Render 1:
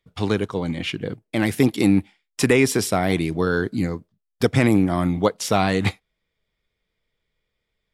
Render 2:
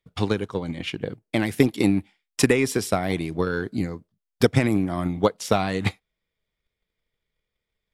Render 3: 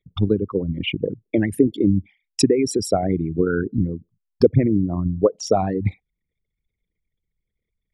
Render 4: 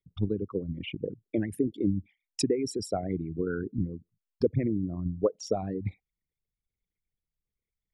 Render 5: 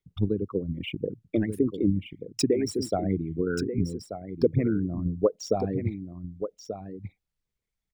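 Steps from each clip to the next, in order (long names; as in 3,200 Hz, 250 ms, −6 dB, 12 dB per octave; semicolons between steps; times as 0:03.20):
transient designer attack +8 dB, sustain +1 dB; level −6 dB
spectral envelope exaggerated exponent 3; in parallel at +2.5 dB: speech leveller within 4 dB 0.5 s; on the sum: level −4 dB
rotating-speaker cabinet horn 7 Hz, later 1.2 Hz, at 0:03.88; level −8.5 dB
running median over 3 samples; single-tap delay 1,184 ms −9.5 dB; level +3 dB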